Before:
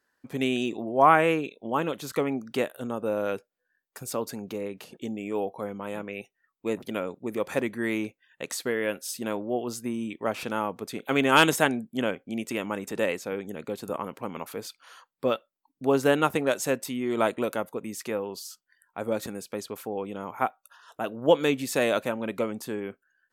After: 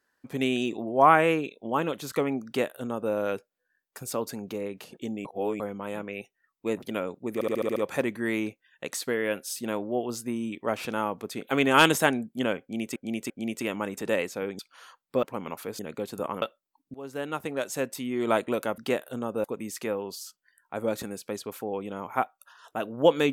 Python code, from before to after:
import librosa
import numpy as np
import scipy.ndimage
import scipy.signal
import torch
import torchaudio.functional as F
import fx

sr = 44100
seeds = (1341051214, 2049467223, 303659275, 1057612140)

y = fx.edit(x, sr, fx.duplicate(start_s=2.46, length_s=0.66, to_s=17.68),
    fx.reverse_span(start_s=5.25, length_s=0.35),
    fx.stutter(start_s=7.34, slice_s=0.07, count=7),
    fx.repeat(start_s=12.2, length_s=0.34, count=3),
    fx.swap(start_s=13.49, length_s=0.63, other_s=14.68, other_length_s=0.64),
    fx.fade_in_from(start_s=15.84, length_s=1.3, floor_db=-23.0), tone=tone)